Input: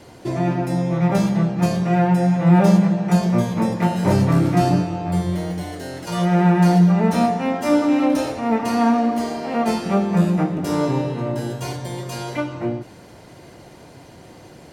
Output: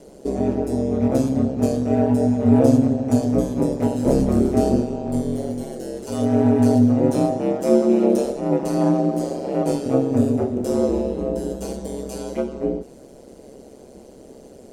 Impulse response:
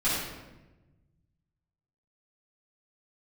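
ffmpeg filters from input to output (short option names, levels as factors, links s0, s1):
-af "aeval=exprs='val(0)*sin(2*PI*67*n/s)':c=same,equalizer=f=125:t=o:w=1:g=-3,equalizer=f=250:t=o:w=1:g=4,equalizer=f=500:t=o:w=1:g=10,equalizer=f=1000:t=o:w=1:g=-7,equalizer=f=2000:t=o:w=1:g=-8,equalizer=f=4000:t=o:w=1:g=-4,equalizer=f=8000:t=o:w=1:g=6,volume=0.841"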